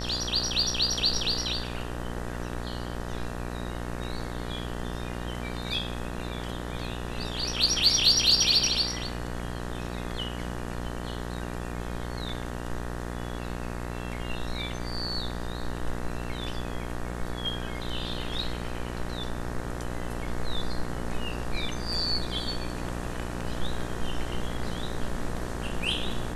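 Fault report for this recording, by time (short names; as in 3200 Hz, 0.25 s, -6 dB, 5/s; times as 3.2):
buzz 60 Hz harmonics 32 -35 dBFS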